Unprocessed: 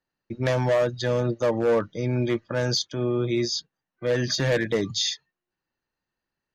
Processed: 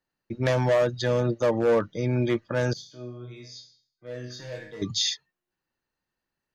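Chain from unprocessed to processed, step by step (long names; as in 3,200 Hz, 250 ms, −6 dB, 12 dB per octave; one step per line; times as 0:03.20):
0:02.73–0:04.82: resonators tuned to a chord G#2 minor, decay 0.51 s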